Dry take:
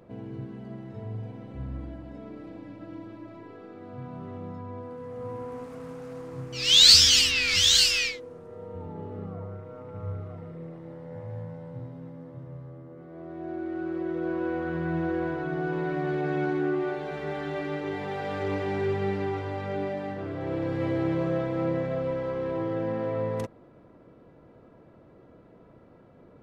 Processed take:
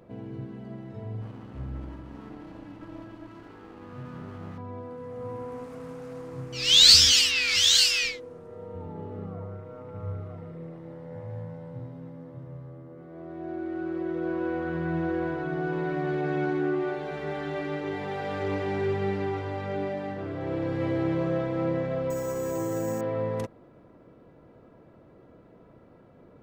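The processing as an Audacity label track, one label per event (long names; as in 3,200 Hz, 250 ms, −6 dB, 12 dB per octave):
1.210000	4.580000	lower of the sound and its delayed copy delay 0.65 ms
7.120000	8.030000	low-shelf EQ 270 Hz −10 dB
22.100000	23.010000	bad sample-rate conversion rate divided by 6×, down none, up hold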